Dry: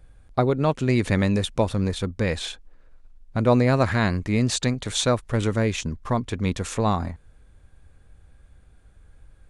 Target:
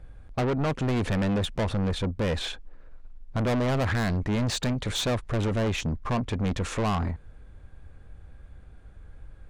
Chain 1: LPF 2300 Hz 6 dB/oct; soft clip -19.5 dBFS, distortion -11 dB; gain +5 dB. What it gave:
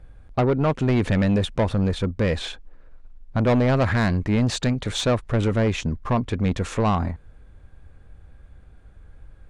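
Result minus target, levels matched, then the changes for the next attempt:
soft clip: distortion -6 dB
change: soft clip -28 dBFS, distortion -5 dB

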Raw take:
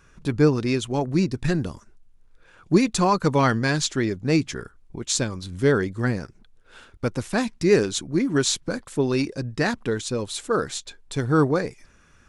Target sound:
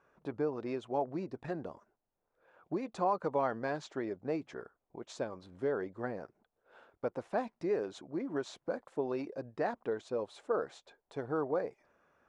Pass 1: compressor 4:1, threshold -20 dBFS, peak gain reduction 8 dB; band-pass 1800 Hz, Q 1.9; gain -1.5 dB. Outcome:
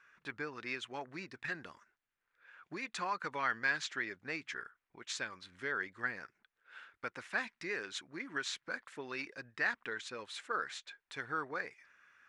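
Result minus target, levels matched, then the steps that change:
2000 Hz band +13.5 dB
change: band-pass 670 Hz, Q 1.9

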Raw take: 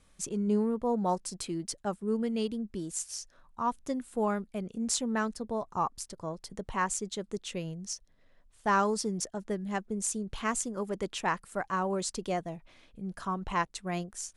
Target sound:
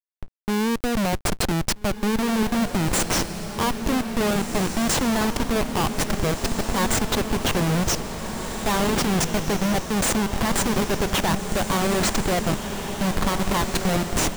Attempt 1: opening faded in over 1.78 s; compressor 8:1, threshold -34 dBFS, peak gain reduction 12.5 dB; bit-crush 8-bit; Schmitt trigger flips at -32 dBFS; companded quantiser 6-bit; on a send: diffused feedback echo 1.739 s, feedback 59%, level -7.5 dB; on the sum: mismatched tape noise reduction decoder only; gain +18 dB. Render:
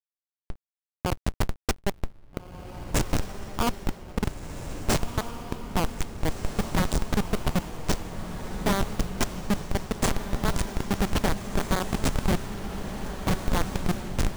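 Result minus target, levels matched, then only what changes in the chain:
Schmitt trigger: distortion +16 dB
change: Schmitt trigger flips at -39 dBFS

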